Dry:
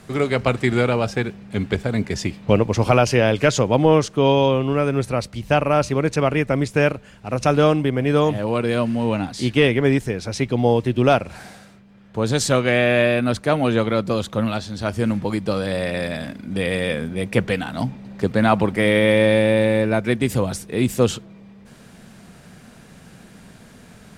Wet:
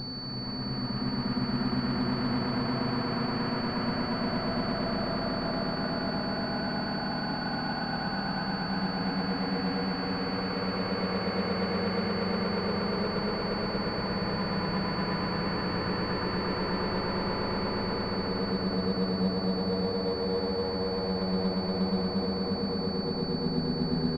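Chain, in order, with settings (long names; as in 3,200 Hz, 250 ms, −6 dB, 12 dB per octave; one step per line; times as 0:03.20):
played backwards from end to start
low-shelf EQ 67 Hz −9.5 dB
comb filter 4.8 ms, depth 50%
treble cut that deepens with the level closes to 540 Hz, closed at −15 dBFS
wrap-around overflow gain 14.5 dB
extreme stretch with random phases 28×, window 0.25 s, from 0:06.25
tube saturation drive 32 dB, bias 0.75
high-frequency loss of the air 280 metres
on a send: echo that builds up and dies away 118 ms, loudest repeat 5, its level −4 dB
on the sum: switching amplifier with a slow clock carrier 4,500 Hz
level −1.5 dB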